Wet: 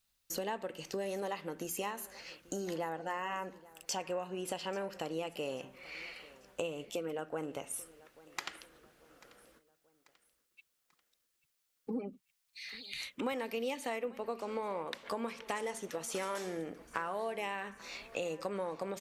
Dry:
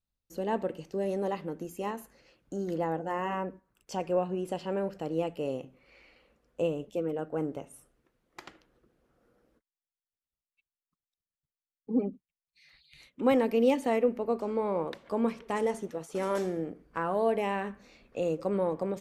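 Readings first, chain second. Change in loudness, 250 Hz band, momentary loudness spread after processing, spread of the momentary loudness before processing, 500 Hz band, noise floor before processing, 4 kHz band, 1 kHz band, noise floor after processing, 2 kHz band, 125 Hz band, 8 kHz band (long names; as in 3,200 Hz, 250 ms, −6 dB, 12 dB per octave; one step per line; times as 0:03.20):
−8.0 dB, −10.5 dB, 9 LU, 13 LU, −8.5 dB, below −85 dBFS, +4.0 dB, −5.0 dB, −80 dBFS, 0.0 dB, −10.0 dB, +8.0 dB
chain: tilt shelving filter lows −8 dB, about 770 Hz
downward compressor 5 to 1, threshold −44 dBFS, peak gain reduction 19.5 dB
repeating echo 839 ms, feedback 45%, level −21 dB
level +8 dB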